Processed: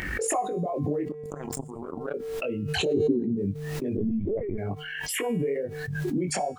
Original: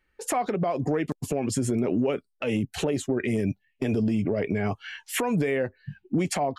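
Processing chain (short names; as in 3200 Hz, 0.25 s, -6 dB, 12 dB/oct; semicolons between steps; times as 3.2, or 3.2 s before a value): formant sharpening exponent 2; HPF 67 Hz; upward compressor, threshold -32 dBFS; added noise pink -68 dBFS; 2.93–3.36 synth low-pass 480 Hz -> 160 Hz, resonance Q 4.9; chorus 2.3 Hz, delay 20 ms, depth 2.7 ms; 1.12–2.14 power-law curve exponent 3; resonator 150 Hz, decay 0.78 s, harmonics odd, mix 60%; 3.97–4.58 LPC vocoder at 8 kHz pitch kept; backwards sustainer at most 26 dB/s; gain +6.5 dB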